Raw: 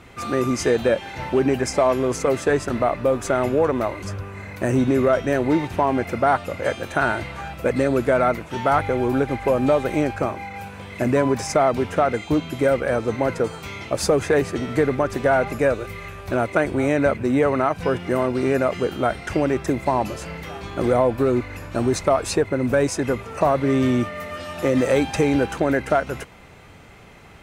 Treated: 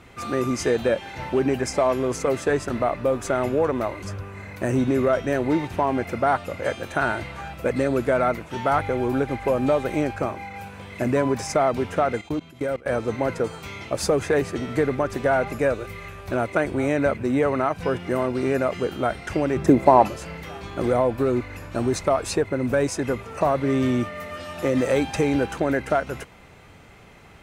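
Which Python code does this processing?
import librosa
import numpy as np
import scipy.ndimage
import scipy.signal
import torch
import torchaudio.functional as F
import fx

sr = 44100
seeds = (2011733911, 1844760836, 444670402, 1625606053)

y = fx.level_steps(x, sr, step_db=22, at=(12.21, 12.86))
y = fx.peak_eq(y, sr, hz=fx.line((19.56, 150.0), (20.07, 1000.0)), db=10.5, octaves=2.7, at=(19.56, 20.07), fade=0.02)
y = F.gain(torch.from_numpy(y), -2.5).numpy()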